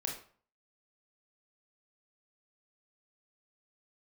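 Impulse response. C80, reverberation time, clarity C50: 11.0 dB, 0.45 s, 6.0 dB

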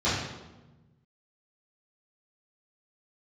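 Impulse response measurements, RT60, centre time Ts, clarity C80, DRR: 1.1 s, 70 ms, 3.5 dB, -13.0 dB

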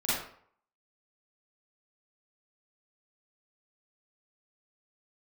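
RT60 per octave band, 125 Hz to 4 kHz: 0.55 s, 0.50 s, 0.55 s, 0.60 s, 0.50 s, 0.40 s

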